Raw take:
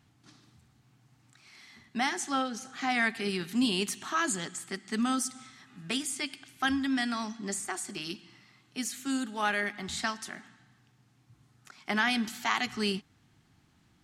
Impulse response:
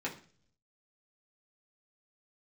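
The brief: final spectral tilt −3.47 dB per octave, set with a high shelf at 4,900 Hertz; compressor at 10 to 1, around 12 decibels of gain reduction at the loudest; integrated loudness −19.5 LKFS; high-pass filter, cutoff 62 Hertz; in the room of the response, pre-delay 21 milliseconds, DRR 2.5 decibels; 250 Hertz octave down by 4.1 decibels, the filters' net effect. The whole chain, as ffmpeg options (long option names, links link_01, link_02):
-filter_complex "[0:a]highpass=62,equalizer=frequency=250:width_type=o:gain=-4.5,highshelf=frequency=4900:gain=7.5,acompressor=threshold=-35dB:ratio=10,asplit=2[link_01][link_02];[1:a]atrim=start_sample=2205,adelay=21[link_03];[link_02][link_03]afir=irnorm=-1:irlink=0,volume=-6.5dB[link_04];[link_01][link_04]amix=inputs=2:normalize=0,volume=18dB"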